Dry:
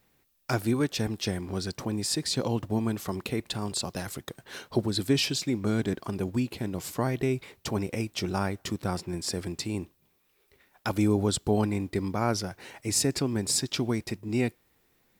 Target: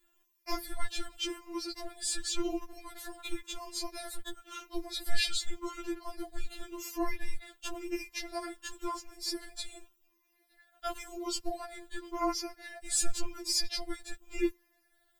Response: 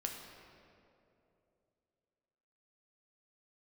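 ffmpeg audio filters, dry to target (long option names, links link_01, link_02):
-af "afftfilt=real='re*pow(10,9/40*sin(2*PI*(0.83*log(max(b,1)*sr/1024/100)/log(2)-(-0.92)*(pts-256)/sr)))':imag='im*pow(10,9/40*sin(2*PI*(0.83*log(max(b,1)*sr/1024/100)/log(2)-(-0.92)*(pts-256)/sr)))':win_size=1024:overlap=0.75,afreqshift=-140,afftfilt=real='re*4*eq(mod(b,16),0)':imag='im*4*eq(mod(b,16),0)':win_size=2048:overlap=0.75,volume=-2dB"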